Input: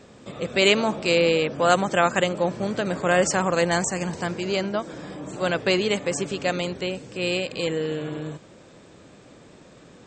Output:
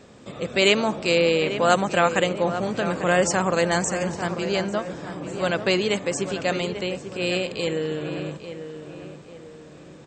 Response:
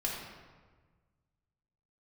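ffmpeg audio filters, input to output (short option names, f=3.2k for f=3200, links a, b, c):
-filter_complex "[0:a]asplit=2[a][b];[b]adelay=845,lowpass=f=2.3k:p=1,volume=-10dB,asplit=2[c][d];[d]adelay=845,lowpass=f=2.3k:p=1,volume=0.42,asplit=2[e][f];[f]adelay=845,lowpass=f=2.3k:p=1,volume=0.42,asplit=2[g][h];[h]adelay=845,lowpass=f=2.3k:p=1,volume=0.42[i];[a][c][e][g][i]amix=inputs=5:normalize=0"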